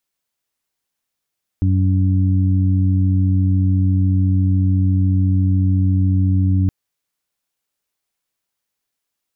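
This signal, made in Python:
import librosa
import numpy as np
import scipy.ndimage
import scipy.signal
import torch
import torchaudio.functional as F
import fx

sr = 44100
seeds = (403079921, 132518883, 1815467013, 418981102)

y = fx.additive_steady(sr, length_s=5.07, hz=94.0, level_db=-13.0, upper_db=(-9.0, -10.0))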